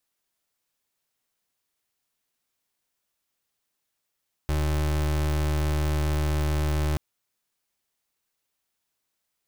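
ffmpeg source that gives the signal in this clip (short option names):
-f lavfi -i "aevalsrc='0.0596*(2*lt(mod(75.6*t,1),0.32)-1)':d=2.48:s=44100"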